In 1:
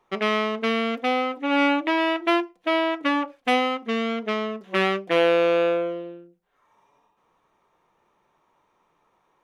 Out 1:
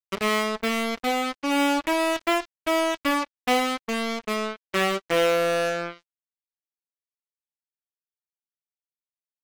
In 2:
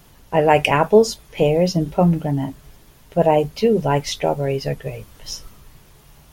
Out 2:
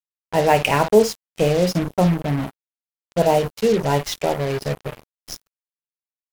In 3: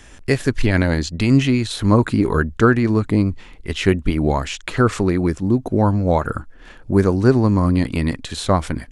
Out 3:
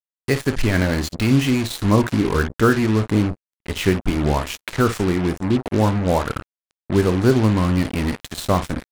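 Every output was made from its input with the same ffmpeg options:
-af "aecho=1:1:28|54:0.2|0.237,acrusher=bits=3:mix=0:aa=0.5,volume=-2dB"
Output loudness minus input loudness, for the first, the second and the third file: −1.5, −1.5, −1.5 LU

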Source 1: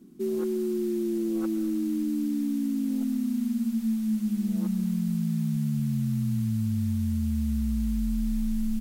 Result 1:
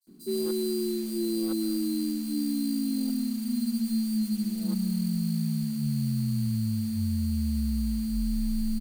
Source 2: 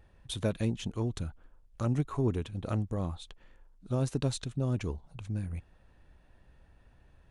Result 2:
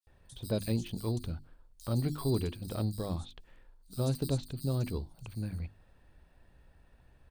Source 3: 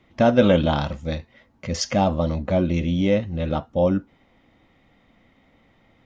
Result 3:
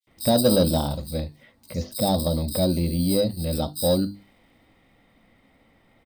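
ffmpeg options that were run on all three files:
-filter_complex "[0:a]bandreject=frequency=50:width_type=h:width=6,bandreject=frequency=100:width_type=h:width=6,bandreject=frequency=150:width_type=h:width=6,bandreject=frequency=200:width_type=h:width=6,bandreject=frequency=250:width_type=h:width=6,bandreject=frequency=300:width_type=h:width=6,bandreject=frequency=350:width_type=h:width=6,acrossover=split=930[link_01][link_02];[link_01]acrusher=samples=10:mix=1:aa=0.000001[link_03];[link_02]acompressor=threshold=-48dB:ratio=10[link_04];[link_03][link_04]amix=inputs=2:normalize=0,acrossover=split=4700[link_05][link_06];[link_05]adelay=70[link_07];[link_07][link_06]amix=inputs=2:normalize=0,acontrast=69,adynamicequalizer=threshold=0.0112:dfrequency=2100:dqfactor=0.7:tfrequency=2100:tqfactor=0.7:attack=5:release=100:ratio=0.375:range=3.5:mode=boostabove:tftype=highshelf,volume=-7dB"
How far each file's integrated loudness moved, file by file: −1.0, −1.5, −1.5 LU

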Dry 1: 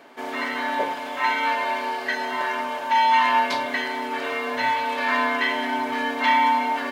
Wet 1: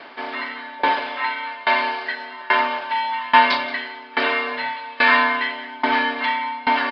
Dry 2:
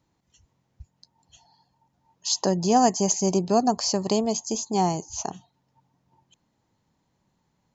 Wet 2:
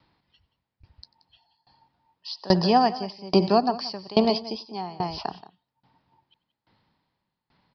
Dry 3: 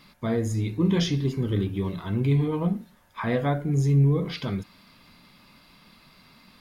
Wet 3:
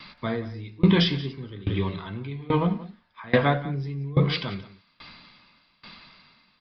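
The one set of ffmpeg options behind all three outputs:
-filter_complex "[0:a]acrossover=split=160|860[link_01][link_02][link_03];[link_03]acontrast=81[link_04];[link_01][link_02][link_04]amix=inputs=3:normalize=0,aresample=11025,aresample=44100,aecho=1:1:93|178:0.112|0.251,aeval=exprs='val(0)*pow(10,-24*if(lt(mod(1.2*n/s,1),2*abs(1.2)/1000),1-mod(1.2*n/s,1)/(2*abs(1.2)/1000),(mod(1.2*n/s,1)-2*abs(1.2)/1000)/(1-2*abs(1.2)/1000))/20)':channel_layout=same,volume=5.5dB"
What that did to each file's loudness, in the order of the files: +2.0, −0.5, −0.5 LU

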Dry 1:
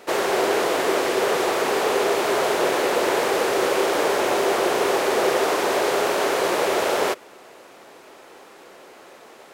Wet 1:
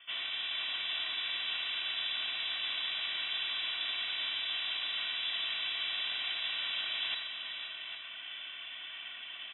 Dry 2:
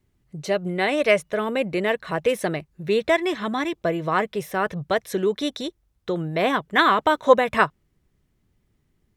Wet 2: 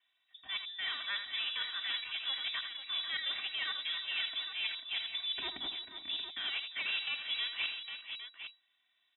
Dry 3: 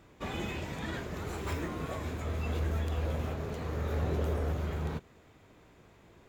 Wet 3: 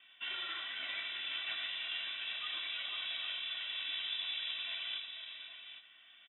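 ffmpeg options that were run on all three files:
-filter_complex "[0:a]acrossover=split=440 3000:gain=0.0631 1 0.224[link_01][link_02][link_03];[link_01][link_02][link_03]amix=inputs=3:normalize=0,aecho=1:1:2.5:0.95,areverse,acompressor=threshold=-35dB:ratio=6,areverse,aeval=exprs='0.0562*(cos(1*acos(clip(val(0)/0.0562,-1,1)))-cos(1*PI/2))+0.00178*(cos(4*acos(clip(val(0)/0.0562,-1,1)))-cos(4*PI/2))':channel_layout=same,aresample=11025,aeval=exprs='clip(val(0),-1,0.0126)':channel_layout=same,aresample=44100,aecho=1:1:81|349|457|489|492|808:0.355|0.141|0.112|0.119|0.299|0.335,lowpass=frequency=3300:width_type=q:width=0.5098,lowpass=frequency=3300:width_type=q:width=0.6013,lowpass=frequency=3300:width_type=q:width=0.9,lowpass=frequency=3300:width_type=q:width=2.563,afreqshift=-3900"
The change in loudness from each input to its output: −13.0, −13.0, −2.5 LU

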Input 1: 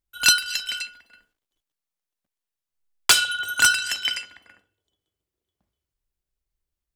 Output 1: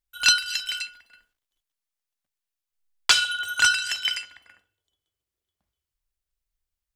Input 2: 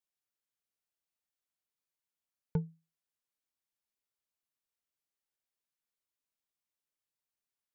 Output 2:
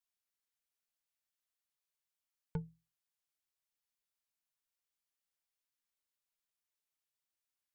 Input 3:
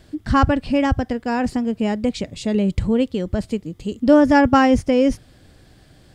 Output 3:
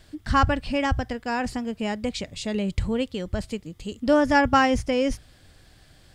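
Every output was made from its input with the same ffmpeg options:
-filter_complex "[0:a]equalizer=frequency=270:width=0.44:gain=-8.5,bandreject=frequency=60:width_type=h:width=6,bandreject=frequency=120:width_type=h:width=6,acrossover=split=7200[link_01][link_02];[link_02]acompressor=threshold=-40dB:ratio=4:attack=1:release=60[link_03];[link_01][link_03]amix=inputs=2:normalize=0"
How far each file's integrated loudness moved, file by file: −1.5, −6.5, −6.0 LU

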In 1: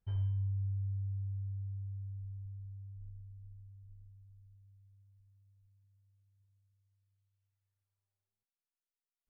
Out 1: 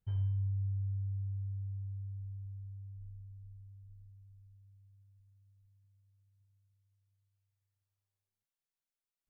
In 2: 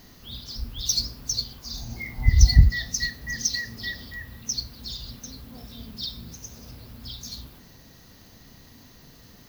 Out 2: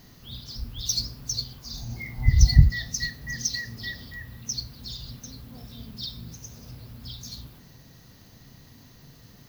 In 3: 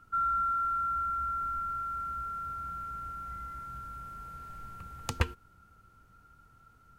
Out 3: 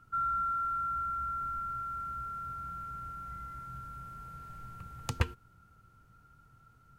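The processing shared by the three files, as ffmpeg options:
-af "equalizer=frequency=130:width_type=o:width=0.69:gain=7.5,volume=-2.5dB"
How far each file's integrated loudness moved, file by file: +0.5, −1.0, −2.5 LU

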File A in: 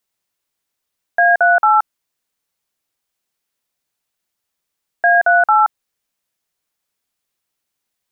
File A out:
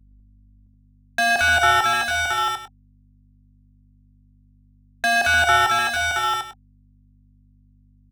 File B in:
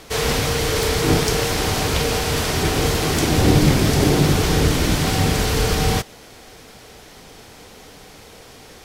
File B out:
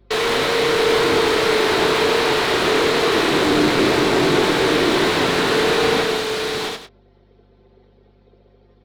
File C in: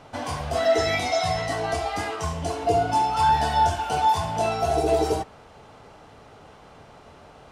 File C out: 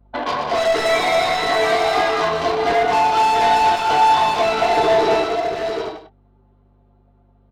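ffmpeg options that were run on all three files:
-filter_complex "[0:a]anlmdn=39.8,highpass=370,equalizer=frequency=380:width_type=q:width=4:gain=4,equalizer=frequency=550:width_type=q:width=4:gain=-3,equalizer=frequency=3900:width_type=q:width=4:gain=7,lowpass=frequency=4700:width=0.5412,lowpass=frequency=4700:width=1.3066,bandreject=frequency=780:width=12,asplit=2[link_01][link_02];[link_02]acompressor=threshold=-25dB:ratio=12,volume=-2dB[link_03];[link_01][link_03]amix=inputs=2:normalize=0,asoftclip=type=tanh:threshold=-20dB,aeval=exprs='val(0)+0.00112*(sin(2*PI*50*n/s)+sin(2*PI*2*50*n/s)/2+sin(2*PI*3*50*n/s)/3+sin(2*PI*4*50*n/s)/4+sin(2*PI*5*50*n/s)/5)':channel_layout=same,volume=23.5dB,asoftclip=hard,volume=-23.5dB,asplit=2[link_04][link_05];[link_05]adelay=23,volume=-12dB[link_06];[link_04][link_06]amix=inputs=2:normalize=0,aecho=1:1:84|123|209|673|747|848:0.158|0.398|0.501|0.473|0.335|0.106,acrossover=split=2500[link_07][link_08];[link_08]acompressor=threshold=-33dB:ratio=4:attack=1:release=60[link_09];[link_07][link_09]amix=inputs=2:normalize=0,volume=7dB"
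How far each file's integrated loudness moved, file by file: −5.5, +1.5, +6.5 LU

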